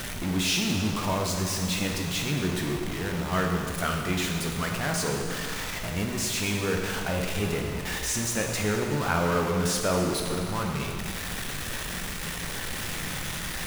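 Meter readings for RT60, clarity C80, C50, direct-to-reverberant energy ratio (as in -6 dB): 2.1 s, 4.0 dB, 3.0 dB, 1.0 dB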